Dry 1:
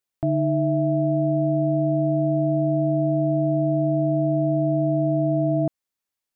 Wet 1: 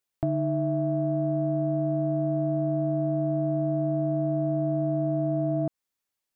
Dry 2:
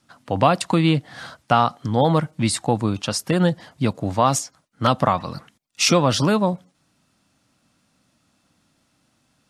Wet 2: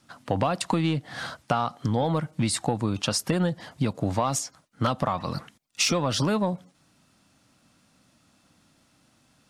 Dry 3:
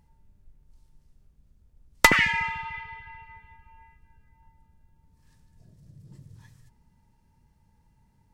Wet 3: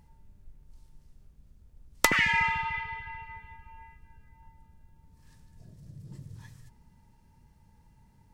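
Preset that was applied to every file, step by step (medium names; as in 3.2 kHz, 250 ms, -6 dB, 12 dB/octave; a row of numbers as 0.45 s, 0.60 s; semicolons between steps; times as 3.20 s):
in parallel at -3 dB: saturation -13.5 dBFS; on the sum: compression 6:1, threshold -19 dBFS; normalise loudness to -27 LUFS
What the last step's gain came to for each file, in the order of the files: -4.0 dB, -2.5 dB, -1.0 dB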